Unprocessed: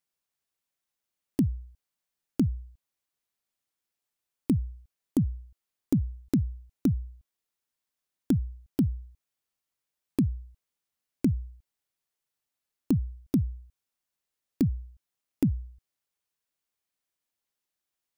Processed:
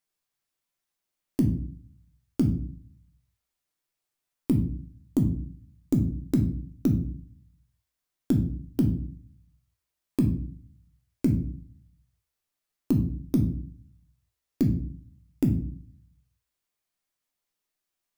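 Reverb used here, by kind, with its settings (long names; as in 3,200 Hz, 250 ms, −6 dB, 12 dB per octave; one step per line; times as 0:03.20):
rectangular room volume 53 cubic metres, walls mixed, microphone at 0.48 metres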